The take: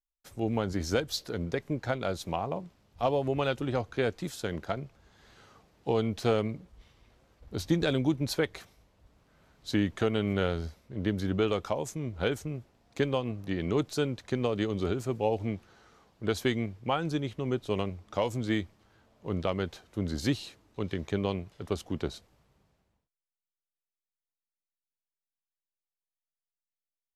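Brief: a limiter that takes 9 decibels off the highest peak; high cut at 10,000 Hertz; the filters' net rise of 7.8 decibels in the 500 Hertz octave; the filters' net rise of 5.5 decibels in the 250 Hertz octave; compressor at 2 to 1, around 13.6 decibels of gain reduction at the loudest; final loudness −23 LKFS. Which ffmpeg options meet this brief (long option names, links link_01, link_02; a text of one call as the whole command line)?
ffmpeg -i in.wav -af "lowpass=10000,equalizer=frequency=250:width_type=o:gain=4.5,equalizer=frequency=500:width_type=o:gain=8,acompressor=threshold=-42dB:ratio=2,volume=18.5dB,alimiter=limit=-11dB:level=0:latency=1" out.wav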